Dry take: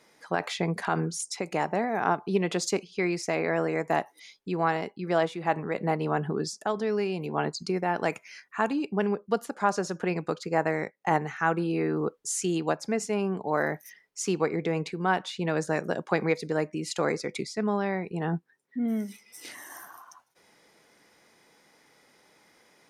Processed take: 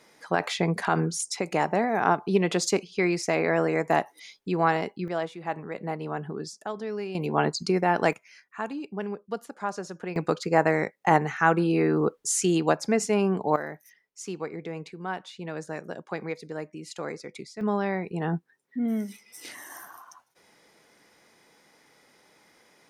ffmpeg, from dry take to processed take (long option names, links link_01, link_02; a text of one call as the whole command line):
ffmpeg -i in.wav -af "asetnsamples=nb_out_samples=441:pad=0,asendcmd='5.08 volume volume -5dB;7.15 volume volume 4.5dB;8.13 volume volume -6dB;10.16 volume volume 4.5dB;13.56 volume volume -7.5dB;17.61 volume volume 1dB',volume=3dB" out.wav